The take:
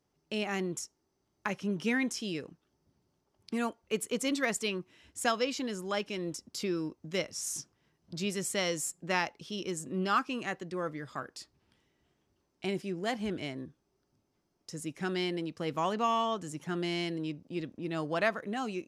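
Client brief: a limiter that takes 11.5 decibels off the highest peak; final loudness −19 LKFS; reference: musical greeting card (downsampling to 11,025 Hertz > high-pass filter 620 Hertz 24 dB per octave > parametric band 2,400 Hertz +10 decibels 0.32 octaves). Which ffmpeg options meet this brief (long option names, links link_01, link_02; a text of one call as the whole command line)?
ffmpeg -i in.wav -af "alimiter=level_in=2dB:limit=-24dB:level=0:latency=1,volume=-2dB,aresample=11025,aresample=44100,highpass=frequency=620:width=0.5412,highpass=frequency=620:width=1.3066,equalizer=frequency=2400:width_type=o:width=0.32:gain=10,volume=20dB" out.wav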